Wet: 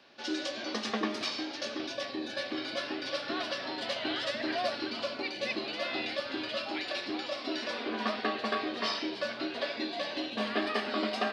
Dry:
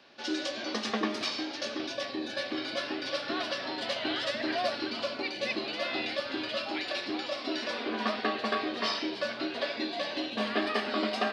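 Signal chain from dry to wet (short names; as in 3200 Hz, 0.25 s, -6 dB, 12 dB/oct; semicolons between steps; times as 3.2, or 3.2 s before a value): gain -1.5 dB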